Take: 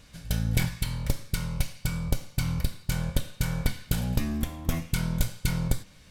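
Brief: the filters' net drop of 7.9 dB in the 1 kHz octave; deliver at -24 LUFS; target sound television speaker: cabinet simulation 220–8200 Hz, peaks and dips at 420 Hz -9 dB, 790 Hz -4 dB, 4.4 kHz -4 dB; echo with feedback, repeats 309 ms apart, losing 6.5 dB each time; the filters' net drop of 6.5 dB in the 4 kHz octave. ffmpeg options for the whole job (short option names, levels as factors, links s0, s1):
-af "highpass=f=220:w=0.5412,highpass=f=220:w=1.3066,equalizer=f=420:t=q:w=4:g=-9,equalizer=f=790:t=q:w=4:g=-4,equalizer=f=4400:t=q:w=4:g=-4,lowpass=f=8200:w=0.5412,lowpass=f=8200:w=1.3066,equalizer=f=1000:t=o:g=-8,equalizer=f=4000:t=o:g=-6,aecho=1:1:309|618|927|1236|1545|1854:0.473|0.222|0.105|0.0491|0.0231|0.0109,volume=5.62"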